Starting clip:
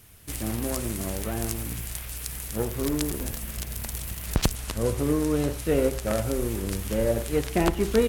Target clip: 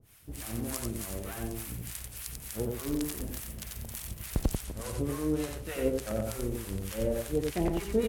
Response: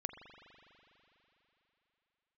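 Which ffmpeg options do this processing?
-filter_complex "[0:a]acrossover=split=730[a][b];[a]aeval=exprs='val(0)*(1-1/2+1/2*cos(2*PI*3.4*n/s))':c=same[c];[b]aeval=exprs='val(0)*(1-1/2-1/2*cos(2*PI*3.4*n/s))':c=same[d];[c][d]amix=inputs=2:normalize=0,aecho=1:1:91:0.668,volume=-3.5dB"

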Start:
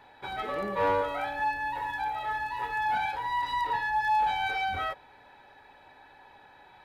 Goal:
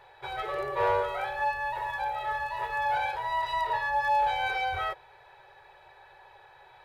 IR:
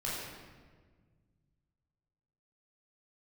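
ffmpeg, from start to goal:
-filter_complex "[0:a]asplit=2[a][b];[b]asetrate=29433,aresample=44100,atempo=1.49831,volume=-12dB[c];[a][c]amix=inputs=2:normalize=0,afftfilt=real='re*(1-between(b*sr/4096,160,340))':imag='im*(1-between(b*sr/4096,160,340))':win_size=4096:overlap=0.75"

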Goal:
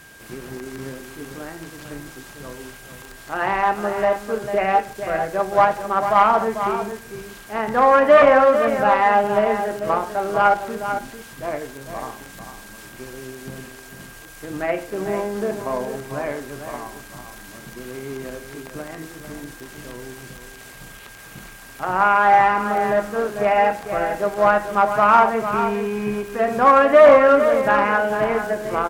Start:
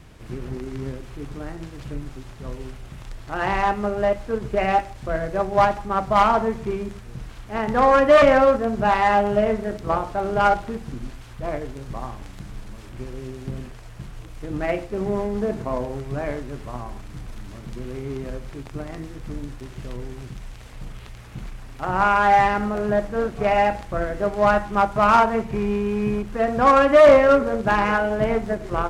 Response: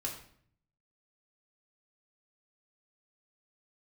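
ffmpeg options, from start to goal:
-filter_complex "[0:a]acrossover=split=2500[a][b];[b]acompressor=threshold=-50dB:ratio=4:attack=1:release=60[c];[a][c]amix=inputs=2:normalize=0,aeval=exprs='val(0)+0.00355*sin(2*PI*1600*n/s)':c=same,aemphasis=mode=production:type=bsi,bandreject=f=60:t=h:w=6,bandreject=f=120:t=h:w=6,aecho=1:1:447:0.355,volume=2.5dB"

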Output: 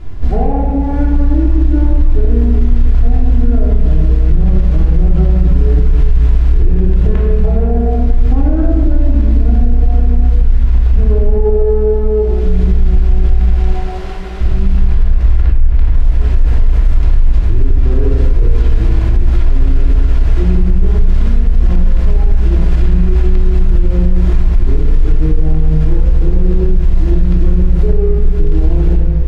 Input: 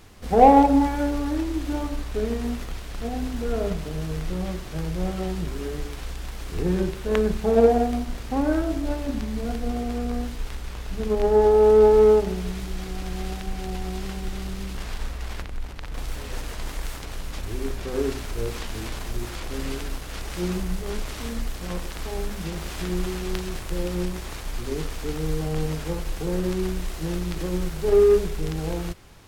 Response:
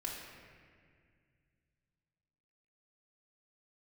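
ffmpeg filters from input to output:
-filter_complex "[0:a]asettb=1/sr,asplit=3[a][b][c];[a]atrim=end=13.404[d];[b]atrim=start=13.4:end=14.41,asetpts=PTS-STARTPTS,afade=t=in:d=0.004:c=qsin,afade=t=out:st=1.006:d=0.004:c=qsin,highpass=480[e];[c]atrim=start=14.406[f];[d][e]acrossfade=d=0.004:c1=hsin:c2=qsin[g];[g][f]acrossfade=d=0.004:c1=qsin:c2=hsin,acompressor=threshold=-27dB:ratio=10,aemphasis=mode=reproduction:type=riaa[h];[1:a]atrim=start_sample=2205[i];[h][i]afir=irnorm=-1:irlink=0,alimiter=level_in=10dB:limit=-1dB:release=50:level=0:latency=1,volume=-1dB"

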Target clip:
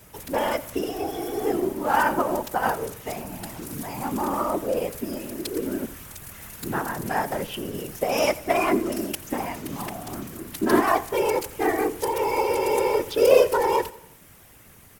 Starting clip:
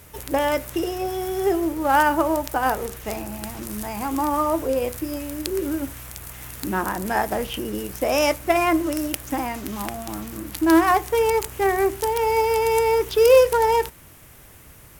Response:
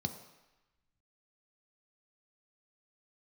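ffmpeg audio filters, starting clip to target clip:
-filter_complex "[0:a]highpass=69,afftfilt=real='hypot(re,im)*cos(2*PI*random(0))':imag='hypot(re,im)*sin(2*PI*random(1))':win_size=512:overlap=0.75,asplit=2[a][b];[b]aecho=0:1:87|174|261|348:0.106|0.0551|0.0286|0.0149[c];[a][c]amix=inputs=2:normalize=0,volume=3dB"

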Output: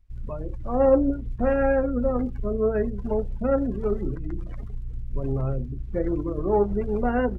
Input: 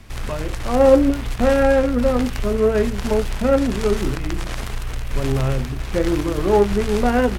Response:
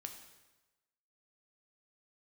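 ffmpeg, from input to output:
-af "afftdn=nr=29:nf=-25,volume=-6dB"

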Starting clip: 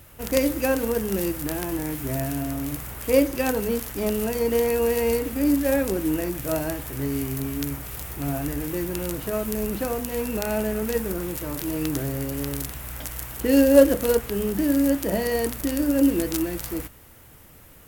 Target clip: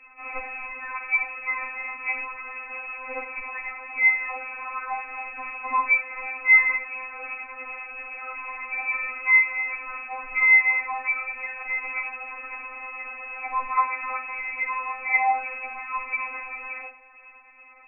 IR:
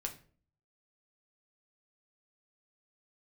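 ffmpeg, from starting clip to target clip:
-filter_complex "[0:a]equalizer=f=250:t=o:w=0.67:g=5,equalizer=f=630:t=o:w=0.67:g=5,equalizer=f=1.6k:t=o:w=0.67:g=10,lowpass=f=2.3k:t=q:w=0.5098,lowpass=f=2.3k:t=q:w=0.6013,lowpass=f=2.3k:t=q:w=0.9,lowpass=f=2.3k:t=q:w=2.563,afreqshift=-2700[a];[1:a]atrim=start_sample=2205,afade=t=out:st=0.45:d=0.01,atrim=end_sample=20286,atrim=end_sample=6174[b];[a][b]afir=irnorm=-1:irlink=0,afftfilt=real='re*3.46*eq(mod(b,12),0)':imag='im*3.46*eq(mod(b,12),0)':win_size=2048:overlap=0.75,volume=2.5dB"

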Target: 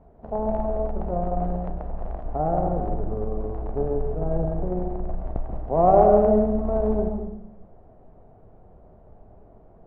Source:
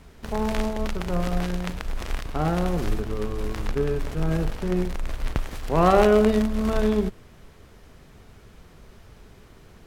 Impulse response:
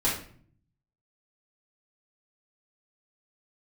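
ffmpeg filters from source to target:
-filter_complex "[0:a]aeval=exprs='0.631*(cos(1*acos(clip(val(0)/0.631,-1,1)))-cos(1*PI/2))+0.1*(cos(6*acos(clip(val(0)/0.631,-1,1)))-cos(6*PI/2))+0.0891*(cos(8*acos(clip(val(0)/0.631,-1,1)))-cos(8*PI/2))':c=same,lowpass=f=700:t=q:w=3.6,asplit=2[a][b];[1:a]atrim=start_sample=2205,asetrate=32634,aresample=44100,adelay=134[c];[b][c]afir=irnorm=-1:irlink=0,volume=-18dB[d];[a][d]amix=inputs=2:normalize=0,volume=-5.5dB"

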